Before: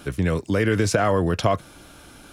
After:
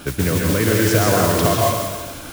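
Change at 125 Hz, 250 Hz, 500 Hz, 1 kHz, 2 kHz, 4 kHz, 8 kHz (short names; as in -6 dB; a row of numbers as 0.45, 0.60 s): +4.5, +4.5, +4.0, +5.0, +4.5, +9.0, +11.0 dB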